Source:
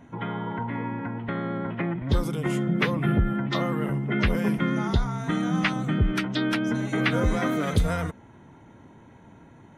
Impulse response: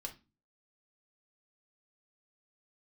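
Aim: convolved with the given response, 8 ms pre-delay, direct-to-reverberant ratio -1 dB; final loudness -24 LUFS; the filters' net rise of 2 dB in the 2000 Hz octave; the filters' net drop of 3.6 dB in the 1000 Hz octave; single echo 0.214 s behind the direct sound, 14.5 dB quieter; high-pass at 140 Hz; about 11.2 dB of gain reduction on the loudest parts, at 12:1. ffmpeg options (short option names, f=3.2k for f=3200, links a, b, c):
-filter_complex "[0:a]highpass=140,equalizer=f=1k:t=o:g=-7,equalizer=f=2k:t=o:g=4.5,acompressor=threshold=-29dB:ratio=12,aecho=1:1:214:0.188,asplit=2[a][b];[1:a]atrim=start_sample=2205,adelay=8[c];[b][c]afir=irnorm=-1:irlink=0,volume=3.5dB[d];[a][d]amix=inputs=2:normalize=0,volume=6dB"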